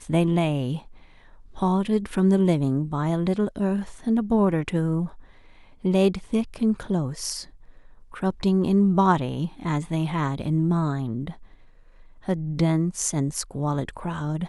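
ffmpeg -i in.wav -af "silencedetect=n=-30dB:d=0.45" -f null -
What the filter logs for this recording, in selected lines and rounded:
silence_start: 0.79
silence_end: 1.57 | silence_duration: 0.79
silence_start: 5.07
silence_end: 5.85 | silence_duration: 0.78
silence_start: 7.42
silence_end: 8.14 | silence_duration: 0.72
silence_start: 11.31
silence_end: 12.28 | silence_duration: 0.97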